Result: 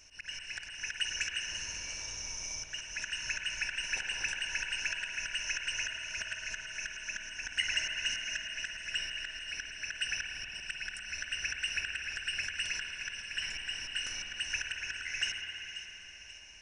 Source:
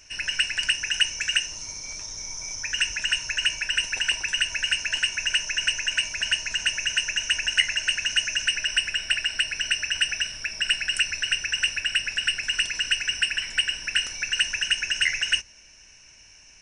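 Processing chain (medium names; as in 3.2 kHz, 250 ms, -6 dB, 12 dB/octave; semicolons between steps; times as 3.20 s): slow attack 233 ms; two-band feedback delay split 2.3 kHz, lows 118 ms, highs 536 ms, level -13 dB; spring tank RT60 3.7 s, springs 52 ms, chirp 55 ms, DRR 2 dB; trim -6 dB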